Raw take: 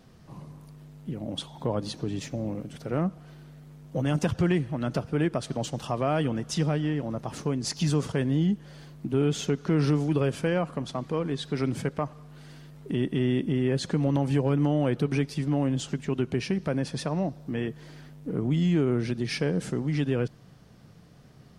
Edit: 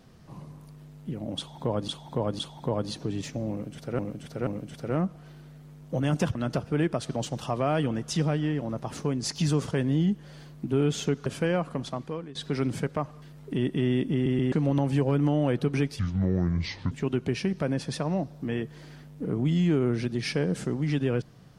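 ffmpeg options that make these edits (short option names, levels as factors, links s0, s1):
-filter_complex "[0:a]asplit=14[s0][s1][s2][s3][s4][s5][s6][s7][s8][s9][s10][s11][s12][s13];[s0]atrim=end=1.882[s14];[s1]atrim=start=1.368:end=1.882[s15];[s2]atrim=start=1.368:end=2.972[s16];[s3]atrim=start=2.488:end=2.972[s17];[s4]atrim=start=2.488:end=4.372[s18];[s5]atrim=start=4.758:end=9.672[s19];[s6]atrim=start=10.278:end=11.37,asetpts=PTS-STARTPTS,afade=t=out:st=0.622:d=0.47:silence=0.133352[s20];[s7]atrim=start=11.37:end=12.242,asetpts=PTS-STARTPTS,afade=t=in:d=0.004:c=hsin:silence=0.133352[s21];[s8]atrim=start=12.598:end=13.642[s22];[s9]atrim=start=13.508:end=13.642[s23];[s10]atrim=start=13.508:end=13.642[s24];[s11]atrim=start=13.898:end=15.374[s25];[s12]atrim=start=15.37:end=15.97,asetpts=PTS-STARTPTS,asetrate=28665,aresample=44100[s26];[s13]atrim=start=15.966[s27];[s14][s15]acrossfade=d=0.004:c1=hsin:c2=hsin[s28];[s28][s16]acrossfade=d=0.004:c1=hsin:c2=hsin[s29];[s29][s17]acrossfade=d=0.004:c1=hsin:c2=hsin[s30];[s30][s18]acrossfade=d=0.004:c1=hsin:c2=hsin[s31];[s31][s19]acrossfade=d=0.004:c1=hsin:c2=hsin[s32];[s20][s21]concat=n=2:v=0:a=1[s33];[s32][s33]acrossfade=d=0.004:c1=hsin:c2=hsin[s34];[s34][s22]acrossfade=d=0.004:c1=hsin:c2=hsin[s35];[s35][s23]acrossfade=d=0.004:c1=hsin:c2=hsin[s36];[s36][s24]acrossfade=d=0.004:c1=hsin:c2=hsin[s37];[s37][s25]acrossfade=d=0.004:c1=hsin:c2=hsin[s38];[s38][s26]acrossfade=d=0.004:c1=hsin:c2=hsin[s39];[s39][s27]acrossfade=d=0.004:c1=hsin:c2=hsin"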